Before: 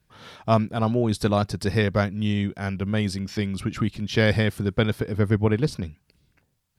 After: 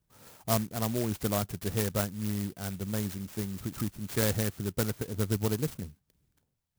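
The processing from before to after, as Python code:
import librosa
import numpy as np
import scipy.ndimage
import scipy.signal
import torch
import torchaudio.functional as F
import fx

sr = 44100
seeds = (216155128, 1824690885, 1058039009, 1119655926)

y = fx.dynamic_eq(x, sr, hz=1500.0, q=1.5, threshold_db=-37.0, ratio=4.0, max_db=3)
y = fx.clock_jitter(y, sr, seeds[0], jitter_ms=0.13)
y = y * librosa.db_to_amplitude(-8.5)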